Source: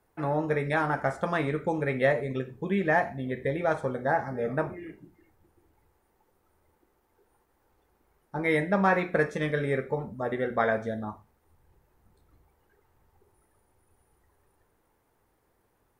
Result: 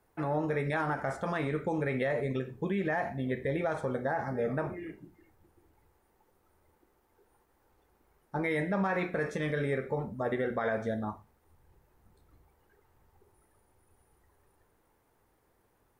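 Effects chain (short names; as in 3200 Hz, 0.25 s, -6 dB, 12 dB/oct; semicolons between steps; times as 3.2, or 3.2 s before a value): limiter -22 dBFS, peak gain reduction 11 dB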